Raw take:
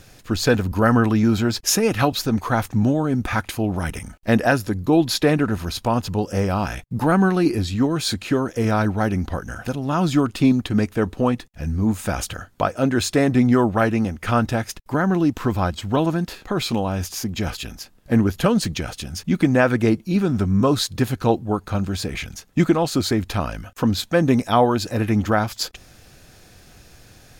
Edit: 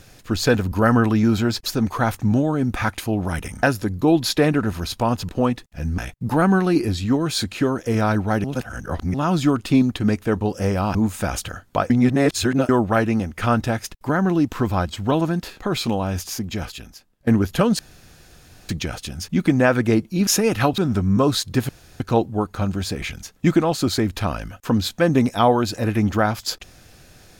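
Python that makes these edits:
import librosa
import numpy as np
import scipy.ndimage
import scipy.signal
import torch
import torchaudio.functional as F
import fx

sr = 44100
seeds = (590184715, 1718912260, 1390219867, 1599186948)

y = fx.edit(x, sr, fx.move(start_s=1.66, length_s=0.51, to_s=20.22),
    fx.cut(start_s=4.14, length_s=0.34),
    fx.swap(start_s=6.14, length_s=0.54, other_s=11.11, other_length_s=0.69),
    fx.reverse_span(start_s=9.14, length_s=0.7),
    fx.reverse_span(start_s=12.75, length_s=0.79),
    fx.fade_out_to(start_s=17.12, length_s=1.0, floor_db=-17.0),
    fx.insert_room_tone(at_s=18.64, length_s=0.9),
    fx.insert_room_tone(at_s=21.13, length_s=0.31), tone=tone)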